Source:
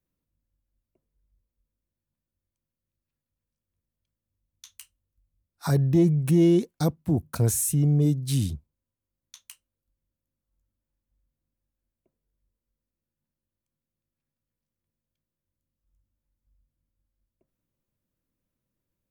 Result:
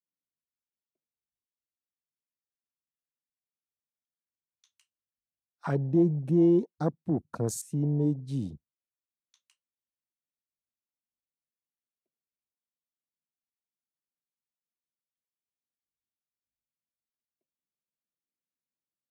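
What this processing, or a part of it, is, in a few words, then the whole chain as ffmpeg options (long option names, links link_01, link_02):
over-cleaned archive recording: -af "highpass=190,lowpass=6700,afwtdn=0.0141,volume=-1.5dB"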